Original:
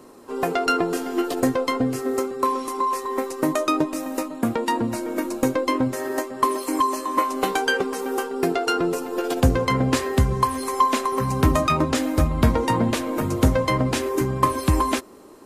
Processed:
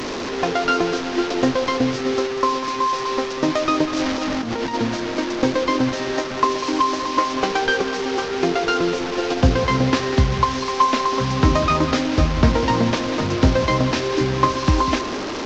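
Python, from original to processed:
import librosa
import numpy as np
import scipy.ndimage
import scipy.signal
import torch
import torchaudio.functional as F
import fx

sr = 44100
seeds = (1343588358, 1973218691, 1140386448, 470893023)

y = fx.delta_mod(x, sr, bps=32000, step_db=-23.0)
y = fx.over_compress(y, sr, threshold_db=-27.0, ratio=-1.0, at=(3.93, 4.73), fade=0.02)
y = y + 10.0 ** (-13.0 / 20.0) * np.pad(y, (int(196 * sr / 1000.0), 0))[:len(y)]
y = F.gain(torch.from_numpy(y), 2.0).numpy()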